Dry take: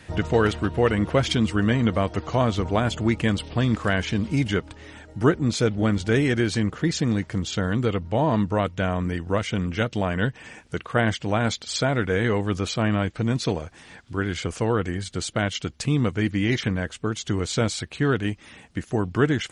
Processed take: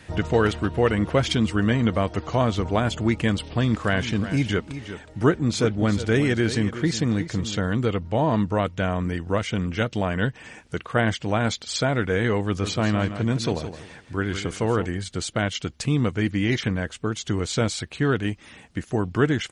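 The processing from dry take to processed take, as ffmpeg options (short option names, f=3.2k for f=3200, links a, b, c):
-filter_complex "[0:a]asplit=3[a][b][c];[a]afade=t=out:st=3.81:d=0.02[d];[b]aecho=1:1:367:0.251,afade=t=in:st=3.81:d=0.02,afade=t=out:st=7.6:d=0.02[e];[c]afade=t=in:st=7.6:d=0.02[f];[d][e][f]amix=inputs=3:normalize=0,asplit=3[g][h][i];[g]afade=t=out:st=12.59:d=0.02[j];[h]aecho=1:1:166|332|498:0.316|0.0885|0.0248,afade=t=in:st=12.59:d=0.02,afade=t=out:st=14.84:d=0.02[k];[i]afade=t=in:st=14.84:d=0.02[l];[j][k][l]amix=inputs=3:normalize=0"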